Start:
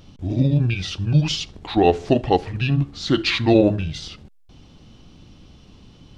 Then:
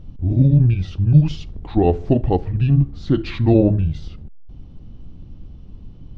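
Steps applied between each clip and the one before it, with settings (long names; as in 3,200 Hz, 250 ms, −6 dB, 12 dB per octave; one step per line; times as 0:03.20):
spectral tilt −4 dB per octave
level −6 dB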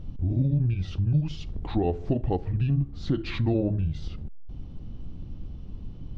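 downward compressor 2.5 to 1, threshold −26 dBFS, peak gain reduction 13 dB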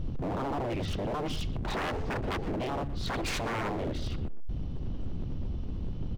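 in parallel at +2 dB: brickwall limiter −21.5 dBFS, peak gain reduction 8.5 dB
on the sum: wave folding −25.5 dBFS
far-end echo of a speakerphone 120 ms, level −12 dB
level −1.5 dB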